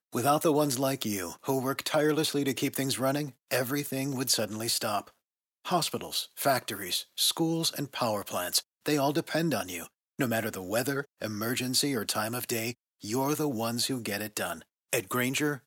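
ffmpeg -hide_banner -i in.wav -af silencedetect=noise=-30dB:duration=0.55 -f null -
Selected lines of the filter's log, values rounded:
silence_start: 4.99
silence_end: 5.67 | silence_duration: 0.67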